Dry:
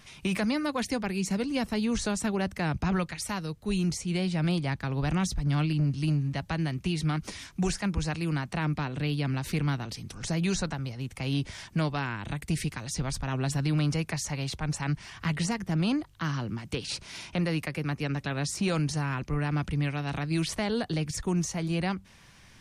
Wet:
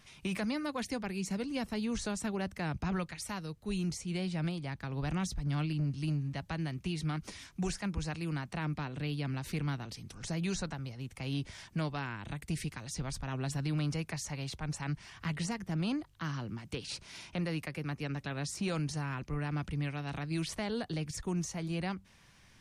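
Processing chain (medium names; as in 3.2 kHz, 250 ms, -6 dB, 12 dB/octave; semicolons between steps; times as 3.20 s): 4.48–4.93 s: compression, threshold -28 dBFS, peak gain reduction 4 dB; trim -6.5 dB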